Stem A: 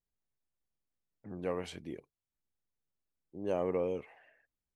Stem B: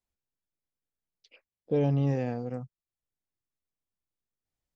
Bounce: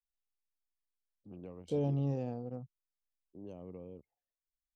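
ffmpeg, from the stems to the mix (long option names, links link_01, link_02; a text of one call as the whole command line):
ffmpeg -i stem1.wav -i stem2.wav -filter_complex "[0:a]acrossover=split=220|3000[link_01][link_02][link_03];[link_02]acompressor=threshold=-43dB:ratio=8[link_04];[link_01][link_04][link_03]amix=inputs=3:normalize=0,volume=-5dB[link_05];[1:a]equalizer=frequency=2200:width=7.5:gain=-5.5,volume=-6.5dB[link_06];[link_05][link_06]amix=inputs=2:normalize=0,anlmdn=0.00398,equalizer=frequency=1800:width_type=o:width=0.81:gain=-12.5" out.wav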